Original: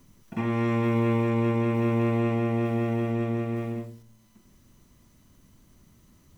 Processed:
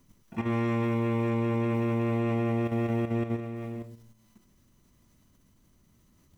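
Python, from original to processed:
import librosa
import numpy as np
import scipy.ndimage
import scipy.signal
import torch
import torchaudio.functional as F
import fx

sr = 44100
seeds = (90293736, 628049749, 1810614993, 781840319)

y = fx.level_steps(x, sr, step_db=9)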